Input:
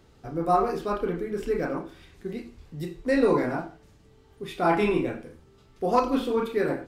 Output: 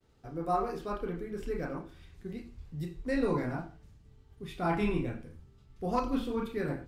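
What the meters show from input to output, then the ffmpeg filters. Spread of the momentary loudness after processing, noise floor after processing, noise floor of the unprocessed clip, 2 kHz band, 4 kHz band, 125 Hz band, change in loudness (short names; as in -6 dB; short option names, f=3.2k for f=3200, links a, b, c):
15 LU, -60 dBFS, -57 dBFS, -8.0 dB, -7.5 dB, -1.5 dB, -8.0 dB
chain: -af "agate=range=-33dB:threshold=-53dB:ratio=3:detection=peak,asubboost=boost=4:cutoff=190,volume=-7.5dB"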